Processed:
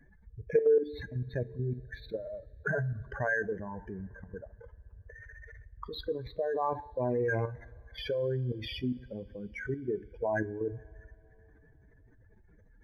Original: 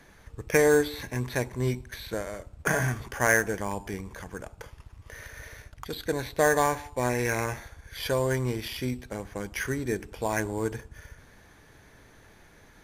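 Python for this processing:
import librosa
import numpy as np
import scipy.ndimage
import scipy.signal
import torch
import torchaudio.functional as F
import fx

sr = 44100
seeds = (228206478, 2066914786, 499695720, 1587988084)

y = fx.spec_expand(x, sr, power=2.9)
y = fx.level_steps(y, sr, step_db=10)
y = fx.rev_double_slope(y, sr, seeds[0], early_s=0.25, late_s=3.7, knee_db=-22, drr_db=13.5)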